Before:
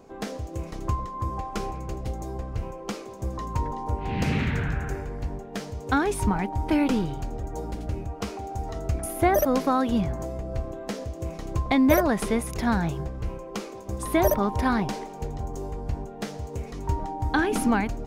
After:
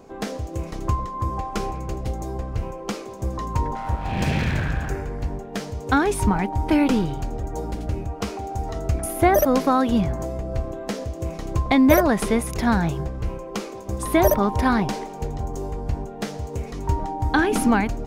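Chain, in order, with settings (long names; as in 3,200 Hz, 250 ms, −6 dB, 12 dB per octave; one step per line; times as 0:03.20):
0:03.75–0:04.90: lower of the sound and its delayed copy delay 1.2 ms
level +4 dB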